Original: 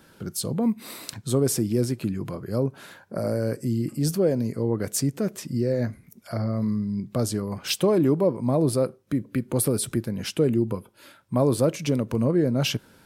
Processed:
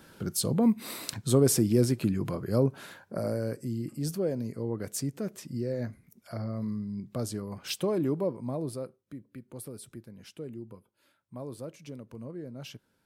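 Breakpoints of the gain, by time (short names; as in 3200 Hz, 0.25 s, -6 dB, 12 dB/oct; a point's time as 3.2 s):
2.68 s 0 dB
3.69 s -8 dB
8.24 s -8 dB
9.26 s -19 dB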